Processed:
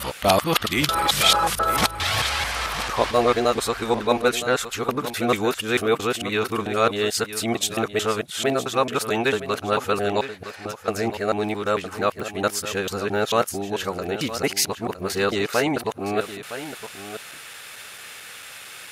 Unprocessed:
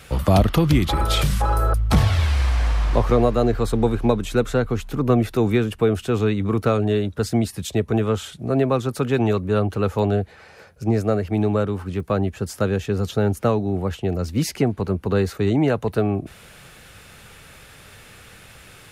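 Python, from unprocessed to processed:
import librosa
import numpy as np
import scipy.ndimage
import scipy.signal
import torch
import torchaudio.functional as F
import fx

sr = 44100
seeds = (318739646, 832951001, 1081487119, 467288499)

y = fx.local_reverse(x, sr, ms=222.0)
y = fx.highpass(y, sr, hz=1400.0, slope=6)
y = y + 10.0 ** (-12.0 / 20.0) * np.pad(y, (int(963 * sr / 1000.0), 0))[:len(y)]
y = y * 10.0 ** (8.5 / 20.0)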